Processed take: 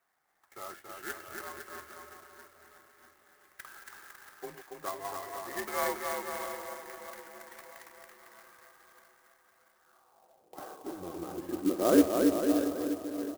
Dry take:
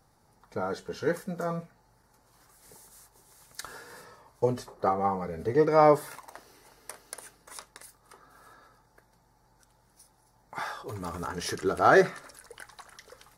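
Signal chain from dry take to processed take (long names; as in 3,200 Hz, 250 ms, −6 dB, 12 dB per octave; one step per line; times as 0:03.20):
feedback delay that plays each chunk backwards 323 ms, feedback 69%, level −10.5 dB
pitch vibrato 0.57 Hz 11 cents
bouncing-ball delay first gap 280 ms, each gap 0.8×, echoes 5
band-pass filter sweep 2,100 Hz → 460 Hz, 0:09.75–0:10.58
single-sideband voice off tune −91 Hz 170–3,600 Hz
converter with an unsteady clock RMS 0.061 ms
level +2 dB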